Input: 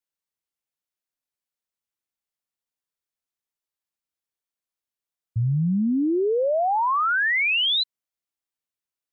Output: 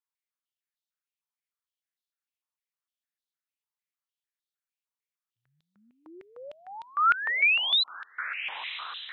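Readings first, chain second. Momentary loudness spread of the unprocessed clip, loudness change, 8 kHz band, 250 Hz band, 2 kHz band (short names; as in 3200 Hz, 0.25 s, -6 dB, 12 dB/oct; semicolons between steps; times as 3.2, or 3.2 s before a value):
7 LU, -4.0 dB, n/a, -32.5 dB, -3.0 dB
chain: diffused feedback echo 1.04 s, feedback 60%, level -12 dB; stepped high-pass 6.6 Hz 980–3700 Hz; gain -8.5 dB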